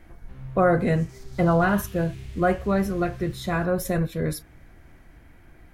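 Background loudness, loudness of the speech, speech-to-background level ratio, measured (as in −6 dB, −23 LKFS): −41.5 LKFS, −24.5 LKFS, 17.0 dB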